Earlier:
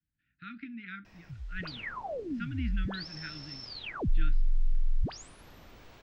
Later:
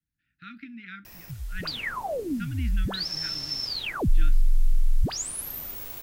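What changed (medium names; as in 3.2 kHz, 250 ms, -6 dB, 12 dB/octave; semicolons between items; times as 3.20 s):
background +6.0 dB; master: remove distance through air 160 m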